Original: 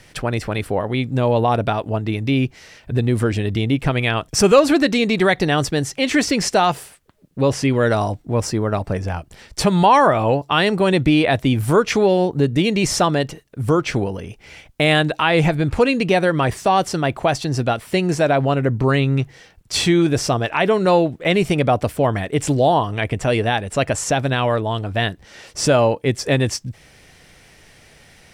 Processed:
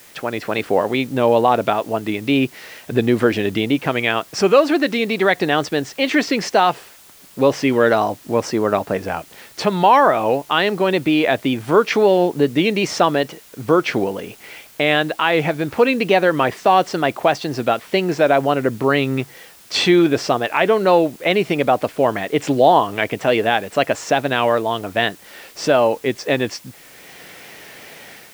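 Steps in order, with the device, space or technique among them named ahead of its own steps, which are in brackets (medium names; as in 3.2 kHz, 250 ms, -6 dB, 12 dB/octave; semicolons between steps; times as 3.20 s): dictaphone (band-pass 250–4200 Hz; level rider; wow and flutter; white noise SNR 28 dB); trim -1 dB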